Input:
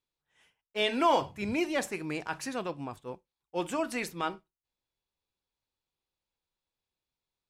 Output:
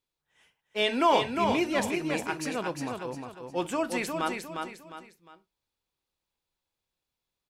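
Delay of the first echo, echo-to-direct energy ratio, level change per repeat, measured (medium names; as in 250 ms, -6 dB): 355 ms, -4.5 dB, -9.0 dB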